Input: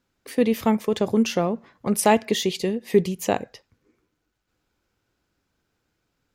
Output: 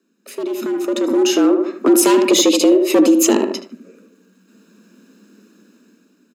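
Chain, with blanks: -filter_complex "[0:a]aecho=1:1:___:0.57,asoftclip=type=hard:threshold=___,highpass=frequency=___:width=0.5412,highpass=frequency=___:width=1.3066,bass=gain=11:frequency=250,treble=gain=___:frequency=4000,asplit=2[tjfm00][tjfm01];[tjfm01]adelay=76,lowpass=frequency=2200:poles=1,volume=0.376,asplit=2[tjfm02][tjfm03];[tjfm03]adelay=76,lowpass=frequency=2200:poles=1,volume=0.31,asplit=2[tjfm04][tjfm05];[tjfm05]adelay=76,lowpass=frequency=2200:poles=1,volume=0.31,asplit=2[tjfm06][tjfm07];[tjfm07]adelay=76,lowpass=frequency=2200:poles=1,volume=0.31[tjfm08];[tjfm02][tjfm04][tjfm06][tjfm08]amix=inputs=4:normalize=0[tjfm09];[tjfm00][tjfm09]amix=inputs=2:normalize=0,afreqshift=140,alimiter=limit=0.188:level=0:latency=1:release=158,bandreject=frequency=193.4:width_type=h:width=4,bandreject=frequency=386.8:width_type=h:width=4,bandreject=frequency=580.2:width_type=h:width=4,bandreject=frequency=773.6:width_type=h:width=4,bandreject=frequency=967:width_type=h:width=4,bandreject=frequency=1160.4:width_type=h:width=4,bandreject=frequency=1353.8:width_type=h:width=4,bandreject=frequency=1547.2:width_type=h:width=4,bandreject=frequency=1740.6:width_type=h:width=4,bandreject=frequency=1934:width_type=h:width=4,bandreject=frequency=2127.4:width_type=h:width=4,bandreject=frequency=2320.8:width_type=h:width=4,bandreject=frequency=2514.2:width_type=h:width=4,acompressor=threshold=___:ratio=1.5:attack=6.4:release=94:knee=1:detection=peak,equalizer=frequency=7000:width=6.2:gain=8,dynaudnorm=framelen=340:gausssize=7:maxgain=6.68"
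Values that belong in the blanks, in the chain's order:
0.8, 0.112, 44, 44, 1, 0.0501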